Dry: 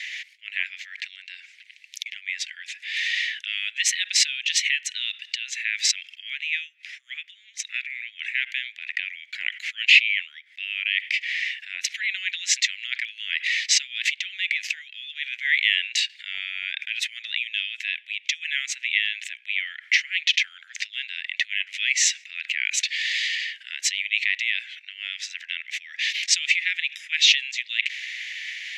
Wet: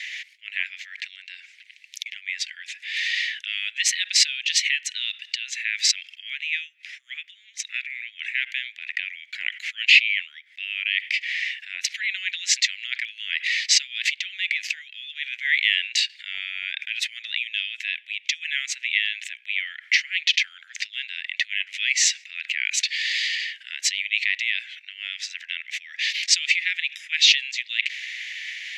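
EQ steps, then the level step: dynamic EQ 4600 Hz, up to +5 dB, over -40 dBFS, Q 4.9; 0.0 dB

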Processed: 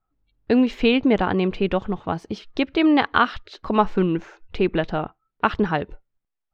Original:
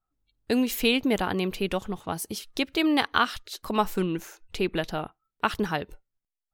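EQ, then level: LPF 2600 Hz 6 dB/oct; air absorption 170 m; +7.0 dB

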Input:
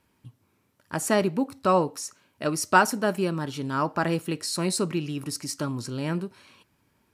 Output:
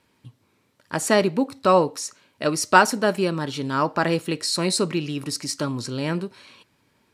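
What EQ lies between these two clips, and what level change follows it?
graphic EQ 125/250/500/1000/2000/4000/8000 Hz +4/+4/+7/+4/+6/+9/+5 dB; -3.0 dB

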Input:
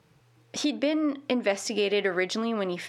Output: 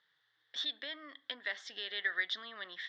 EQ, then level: double band-pass 2500 Hz, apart 0.93 oct; air absorption 160 m; high shelf 2500 Hz +9 dB; 0.0 dB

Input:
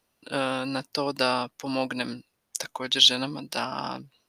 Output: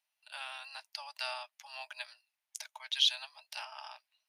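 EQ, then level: rippled Chebyshev high-pass 600 Hz, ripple 6 dB; LPF 1600 Hz 6 dB/oct; differentiator; +6.5 dB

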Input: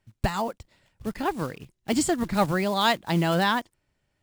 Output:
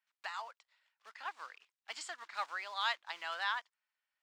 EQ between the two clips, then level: ladder high-pass 900 Hz, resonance 25%; air absorption 150 m; high shelf 4800 Hz +8.5 dB; -4.5 dB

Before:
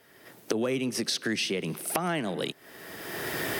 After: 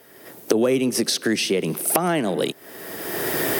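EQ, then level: bell 420 Hz +7.5 dB 2.7 oct; high shelf 7200 Hz +12 dB; +2.5 dB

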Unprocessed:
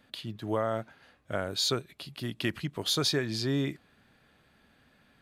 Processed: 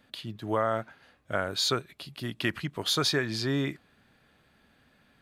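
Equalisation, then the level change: dynamic EQ 1400 Hz, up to +6 dB, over -46 dBFS, Q 0.81; 0.0 dB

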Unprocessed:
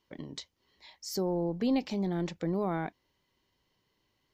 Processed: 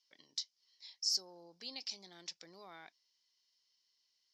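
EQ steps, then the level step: band-pass 5200 Hz, Q 4.7; +10.0 dB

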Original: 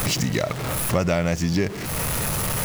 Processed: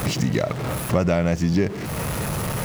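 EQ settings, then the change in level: HPF 160 Hz 6 dB/oct; tilt -2 dB/oct; 0.0 dB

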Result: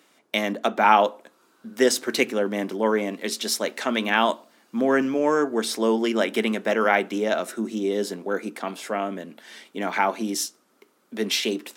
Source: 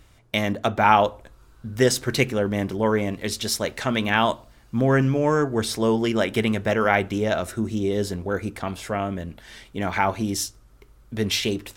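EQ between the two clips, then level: steep high-pass 210 Hz 36 dB/oct; 0.0 dB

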